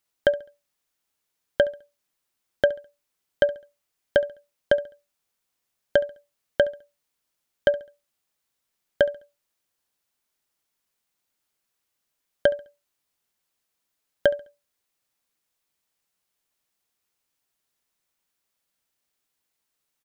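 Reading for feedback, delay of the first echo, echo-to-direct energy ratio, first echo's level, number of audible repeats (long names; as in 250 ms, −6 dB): 33%, 69 ms, −19.5 dB, −20.0 dB, 2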